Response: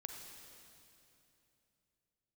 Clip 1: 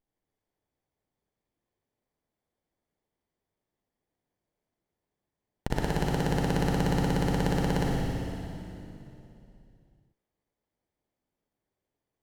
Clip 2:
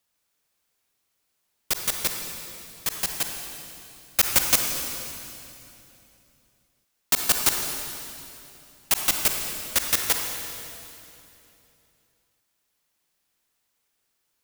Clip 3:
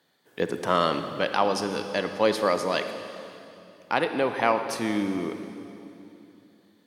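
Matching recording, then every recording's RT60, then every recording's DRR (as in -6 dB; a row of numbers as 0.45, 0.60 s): 2; 2.9, 2.9, 2.9 s; -3.0, 3.0, 7.5 dB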